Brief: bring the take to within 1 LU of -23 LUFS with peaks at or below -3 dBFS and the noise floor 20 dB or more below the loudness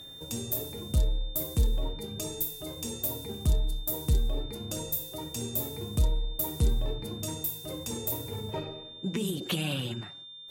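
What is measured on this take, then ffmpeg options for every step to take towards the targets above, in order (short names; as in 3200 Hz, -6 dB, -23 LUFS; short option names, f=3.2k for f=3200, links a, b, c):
steady tone 3600 Hz; tone level -44 dBFS; loudness -32.0 LUFS; peak -15.0 dBFS; loudness target -23.0 LUFS
-> -af "bandreject=f=3.6k:w=30"
-af "volume=9dB"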